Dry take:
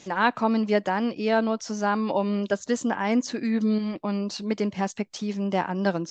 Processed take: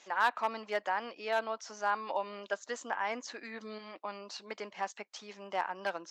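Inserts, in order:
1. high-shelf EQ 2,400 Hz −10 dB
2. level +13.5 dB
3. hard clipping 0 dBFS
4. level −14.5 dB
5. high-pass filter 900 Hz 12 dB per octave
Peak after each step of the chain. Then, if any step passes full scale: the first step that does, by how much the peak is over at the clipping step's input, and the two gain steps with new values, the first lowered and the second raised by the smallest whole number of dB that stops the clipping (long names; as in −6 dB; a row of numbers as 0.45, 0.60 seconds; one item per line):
−8.5, +5.0, 0.0, −14.5, −15.5 dBFS
step 2, 5.0 dB
step 2 +8.5 dB, step 4 −9.5 dB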